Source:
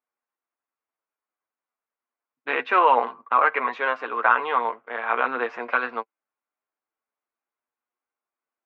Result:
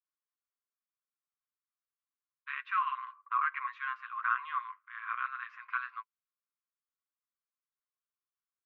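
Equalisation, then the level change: brick-wall FIR high-pass 1 kHz; treble shelf 2.7 kHz -11.5 dB; -8.5 dB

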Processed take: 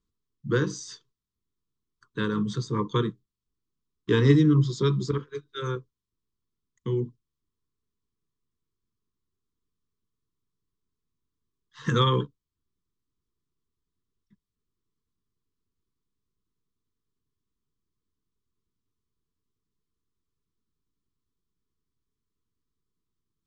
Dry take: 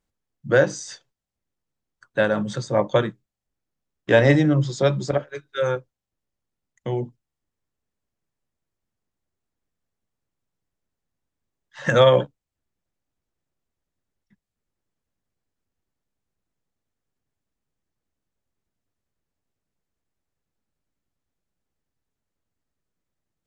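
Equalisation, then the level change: elliptic band-stop 450–1000 Hz, stop band 40 dB; distance through air 72 m; high-order bell 2 kHz -9 dB 1.1 oct; 0.0 dB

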